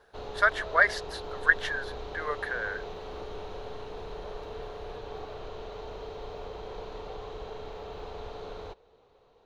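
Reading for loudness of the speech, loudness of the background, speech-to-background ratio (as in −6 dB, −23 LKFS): −27.5 LKFS, −41.0 LKFS, 13.5 dB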